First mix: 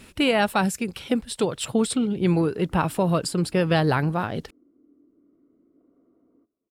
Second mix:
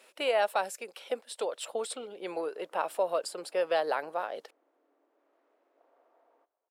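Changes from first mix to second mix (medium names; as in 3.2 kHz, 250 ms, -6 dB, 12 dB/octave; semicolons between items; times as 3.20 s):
background: remove boxcar filter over 52 samples; master: add ladder high-pass 480 Hz, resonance 50%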